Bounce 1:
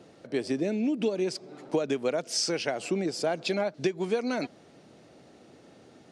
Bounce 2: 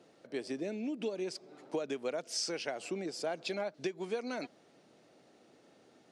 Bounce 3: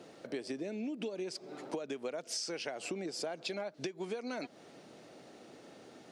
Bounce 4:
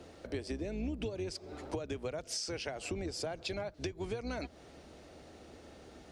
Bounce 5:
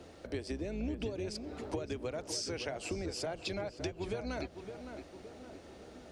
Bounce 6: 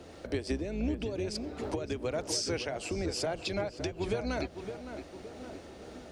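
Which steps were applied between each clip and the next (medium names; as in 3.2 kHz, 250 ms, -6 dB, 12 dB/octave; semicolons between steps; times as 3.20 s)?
high-pass 260 Hz 6 dB/octave; trim -7 dB
compression 6:1, threshold -45 dBFS, peak gain reduction 14 dB; trim +8.5 dB
octave divider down 2 oct, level -1 dB
tape echo 564 ms, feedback 55%, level -7 dB, low-pass 1.7 kHz
random flutter of the level, depth 50%; trim +7.5 dB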